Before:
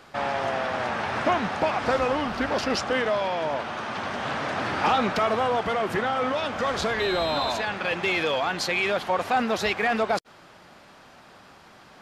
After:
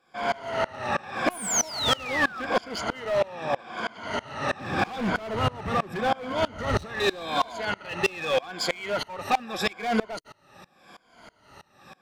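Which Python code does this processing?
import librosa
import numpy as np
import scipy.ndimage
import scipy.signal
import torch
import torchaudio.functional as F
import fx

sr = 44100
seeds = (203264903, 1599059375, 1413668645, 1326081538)

y = fx.spec_ripple(x, sr, per_octave=1.8, drift_hz=-0.83, depth_db=15)
y = fx.spec_paint(y, sr, seeds[0], shape='fall', start_s=1.3, length_s=1.12, low_hz=1200.0, high_hz=11000.0, level_db=-23.0)
y = fx.low_shelf(y, sr, hz=240.0, db=12.0, at=(4.6, 6.86))
y = np.clip(y, -10.0 ** (-18.5 / 20.0), 10.0 ** (-18.5 / 20.0))
y = fx.tremolo_decay(y, sr, direction='swelling', hz=3.1, depth_db=26)
y = y * librosa.db_to_amplitude(3.5)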